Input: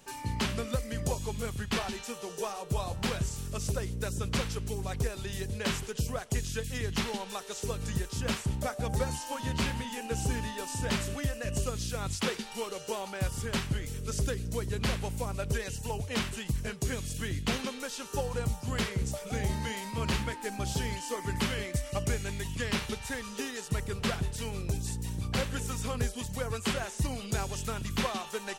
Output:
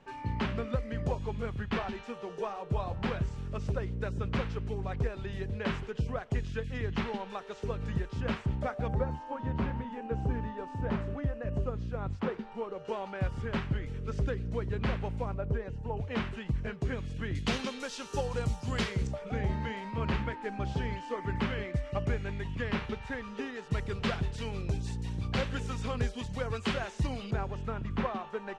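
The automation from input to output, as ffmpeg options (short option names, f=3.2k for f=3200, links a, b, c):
-af "asetnsamples=n=441:p=0,asendcmd='8.94 lowpass f 1200;12.85 lowpass f 2100;15.34 lowpass f 1100;15.97 lowpass f 2100;17.35 lowpass f 5700;19.07 lowpass f 2200;23.71 lowpass f 3900;27.31 lowpass f 1600',lowpass=2.2k"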